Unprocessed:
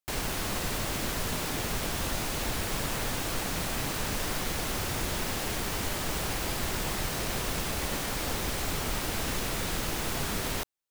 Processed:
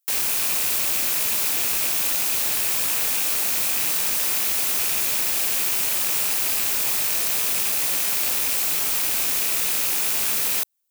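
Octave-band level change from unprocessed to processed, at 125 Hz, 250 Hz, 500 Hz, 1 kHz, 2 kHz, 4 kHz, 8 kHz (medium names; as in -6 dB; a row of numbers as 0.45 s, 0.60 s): -12.0 dB, -6.5 dB, -2.5 dB, 0.0 dB, +5.0 dB, +7.0 dB, +12.0 dB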